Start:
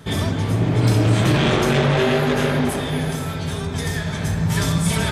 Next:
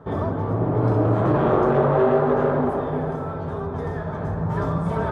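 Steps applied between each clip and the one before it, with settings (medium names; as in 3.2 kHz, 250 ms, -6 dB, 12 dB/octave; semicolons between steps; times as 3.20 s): FFT filter 210 Hz 0 dB, 460 Hz +8 dB, 1.2 kHz +7 dB, 2.3 kHz -15 dB, 9.4 kHz -28 dB; trim -5 dB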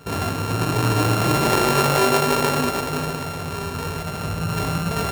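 sorted samples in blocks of 32 samples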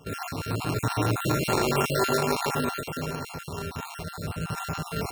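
random holes in the spectrogram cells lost 38%; trim -5 dB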